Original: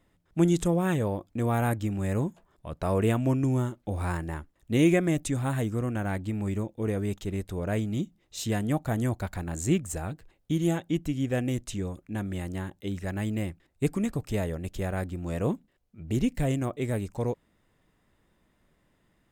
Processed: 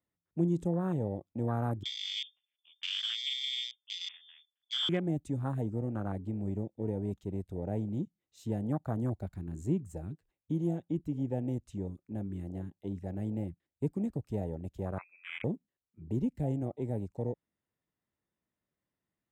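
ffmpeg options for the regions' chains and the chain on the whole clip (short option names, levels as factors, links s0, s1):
-filter_complex "[0:a]asettb=1/sr,asplit=3[s0][s1][s2];[s0]atrim=end=1.834[s3];[s1]atrim=start=1.83:end=4.89,asetpts=PTS-STARTPTS,afade=t=in:d=0.004:c=qsin,afade=t=out:st=3.056:d=0.004:c=qsin,aeval=exprs='val(0)*sin(2*PI*120*n/s)':c=same,lowpass=f=3100:t=q:w=0.5098,lowpass=f=3100:t=q:w=0.6013,lowpass=f=3100:t=q:w=0.9,lowpass=f=3100:t=q:w=2.563,afreqshift=-3600[s4];[s2]atrim=start=4.886[s5];[s3][s4]acrossfade=d=0.004:c1=hsin:c2=qsin[s6];[s6][s5]acrossfade=d=0.004:c1=qsin:c2=hsin,asettb=1/sr,asplit=3[s7][s8][s9];[s7]atrim=end=14.984[s10];[s8]atrim=start=14.98:end=15.44,asetpts=PTS-STARTPTS,afade=t=in:d=0.004:c=qsin,afade=t=out:st=0.456:d=0.004:c=qsin,equalizer=f=100:t=o:w=1.7:g=-11.5,lowpass=f=2300:t=q:w=0.5098,lowpass=f=2300:t=q:w=0.6013,lowpass=f=2300:t=q:w=0.9,lowpass=f=2300:t=q:w=2.563,afreqshift=-2700[s11];[s9]atrim=start=15.436[s12];[s10][s11]acrossfade=d=0.004:c1=hsin:c2=qsin[s13];[s13][s12]acrossfade=d=0.004:c1=qsin:c2=hsin,afwtdn=0.0316,highpass=73,acrossover=split=230[s14][s15];[s15]acompressor=threshold=0.0355:ratio=2[s16];[s14][s16]amix=inputs=2:normalize=0,volume=0.596"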